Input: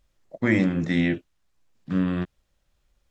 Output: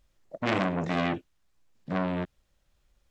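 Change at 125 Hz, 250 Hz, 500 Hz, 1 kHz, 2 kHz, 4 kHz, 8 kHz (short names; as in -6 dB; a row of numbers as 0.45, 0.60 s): -6.5 dB, -8.0 dB, -0.5 dB, +9.0 dB, -4.5 dB, 0.0 dB, n/a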